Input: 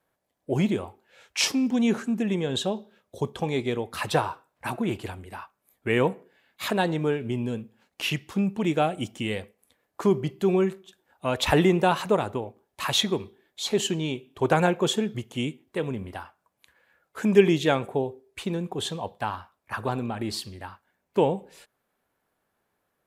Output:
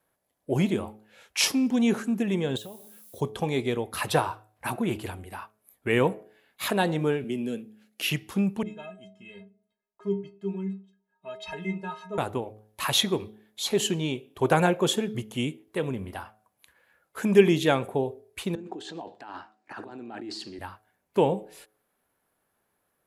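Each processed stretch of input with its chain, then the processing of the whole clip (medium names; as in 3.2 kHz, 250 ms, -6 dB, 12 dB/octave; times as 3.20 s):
2.56–3.19 s: compression 5:1, threshold -40 dBFS + added noise violet -54 dBFS
7.24–8.10 s: high-pass 170 Hz 24 dB/octave + peaking EQ 970 Hz -15 dB 0.49 oct
8.63–12.18 s: low-pass 5.2 kHz + inharmonic resonator 190 Hz, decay 0.41 s, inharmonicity 0.03 + tape noise reduction on one side only decoder only
18.55–20.59 s: compressor with a negative ratio -36 dBFS + cabinet simulation 300–6400 Hz, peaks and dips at 310 Hz +10 dB, 530 Hz -7 dB, 1.1 kHz -9 dB, 2.3 kHz -5 dB, 3.4 kHz -8 dB, 5.8 kHz -4 dB
whole clip: peaking EQ 11 kHz +10 dB 0.28 oct; de-hum 107.2 Hz, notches 7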